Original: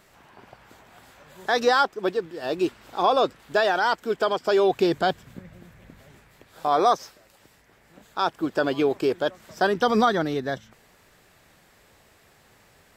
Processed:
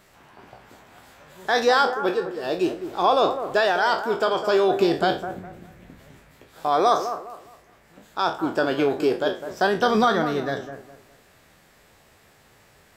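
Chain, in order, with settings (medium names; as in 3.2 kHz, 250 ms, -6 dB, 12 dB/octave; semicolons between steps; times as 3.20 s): spectral sustain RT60 0.32 s; bucket-brigade echo 205 ms, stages 2048, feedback 30%, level -10 dB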